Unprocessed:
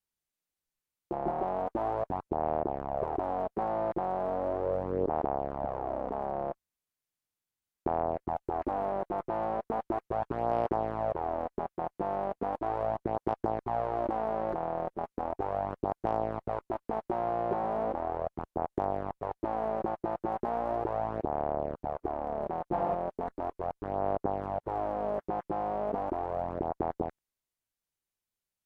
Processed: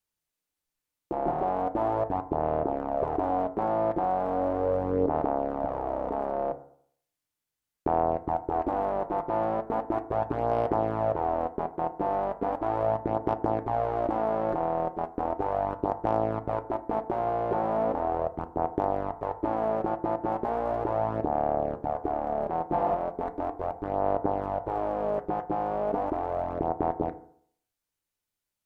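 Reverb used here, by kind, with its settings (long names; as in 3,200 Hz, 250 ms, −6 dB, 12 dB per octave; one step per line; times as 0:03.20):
feedback delay network reverb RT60 0.61 s, low-frequency decay 0.95×, high-frequency decay 0.35×, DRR 8.5 dB
level +3 dB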